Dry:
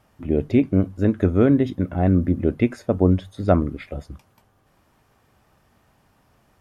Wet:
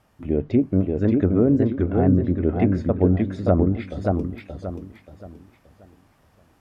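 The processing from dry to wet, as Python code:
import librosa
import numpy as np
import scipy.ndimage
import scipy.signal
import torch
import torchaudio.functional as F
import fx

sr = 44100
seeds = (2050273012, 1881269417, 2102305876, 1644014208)

y = fx.env_lowpass_down(x, sr, base_hz=710.0, full_db=-12.0)
y = fx.echo_warbled(y, sr, ms=578, feedback_pct=33, rate_hz=2.8, cents=115, wet_db=-3.0)
y = y * librosa.db_to_amplitude(-1.5)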